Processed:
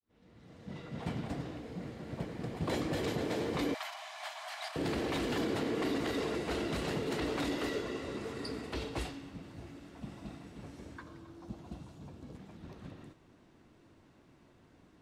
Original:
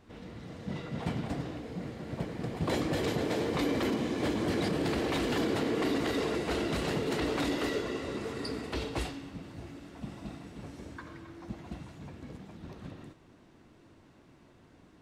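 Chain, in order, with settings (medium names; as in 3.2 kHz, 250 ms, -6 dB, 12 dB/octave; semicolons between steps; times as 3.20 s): fade-in on the opening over 1.14 s; 3.74–4.76 s: Chebyshev high-pass 630 Hz, order 8; 11.03–12.35 s: peaking EQ 2 kHz -8.5 dB 0.83 oct; trim -3.5 dB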